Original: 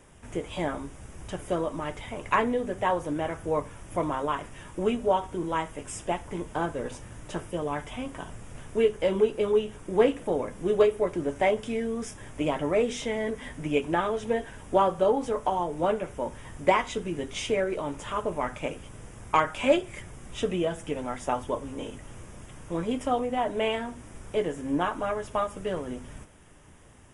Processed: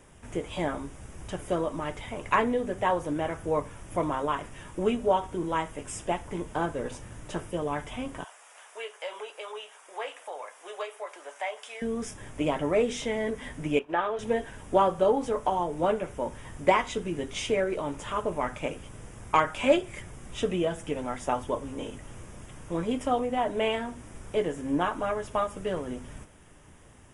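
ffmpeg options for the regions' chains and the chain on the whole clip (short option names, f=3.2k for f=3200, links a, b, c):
-filter_complex "[0:a]asettb=1/sr,asplit=3[a][b][c];[a]atrim=end=8.244[d];[b]atrim=start=8.24:end=11.82,asetpts=PTS-STARTPTS,afade=t=in:d=0.004:c=qsin,afade=t=out:st=3.576:d=0.004:c=qsin,highpass=f=690:w=0.5412,highpass=f=690:w=1.3066,acompressor=threshold=-37dB:ratio=1.5:attack=3.2:release=140:knee=1:detection=peak[e];[c]atrim=start=11.816[f];[d][e]acrossfade=d=0.004:c1=hsin:c2=qsin[g];[g][f]acrossfade=d=0.004:c1=qsin:c2=hsin,asettb=1/sr,asplit=3[h][i][j];[h]atrim=end=13.794[k];[i]atrim=start=13.79:end=14.19,asetpts=PTS-STARTPTS,afade=t=in:d=0.004:c=qsin,afade=t=out:st=0.396:d=0.004:c=qsin,bandreject=f=2.1k:w=18,agate=range=-33dB:threshold=-30dB:ratio=3:release=100:detection=peak,acrossover=split=380 3800:gain=0.224 1 0.112[l][m][n];[l][m][n]amix=inputs=3:normalize=0[o];[j]atrim=start=14.186[p];[k][o]acrossfade=d=0.004:c1=hsin:c2=qsin[q];[q][p]acrossfade=d=0.004:c1=qsin:c2=hsin"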